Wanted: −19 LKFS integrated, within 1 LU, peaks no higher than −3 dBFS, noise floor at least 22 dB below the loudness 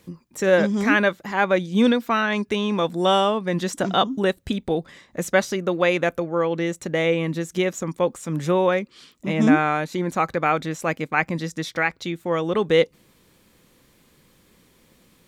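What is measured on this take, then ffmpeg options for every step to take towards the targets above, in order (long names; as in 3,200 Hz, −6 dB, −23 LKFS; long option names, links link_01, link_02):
integrated loudness −22.0 LKFS; sample peak −4.0 dBFS; target loudness −19.0 LKFS
→ -af "volume=3dB,alimiter=limit=-3dB:level=0:latency=1"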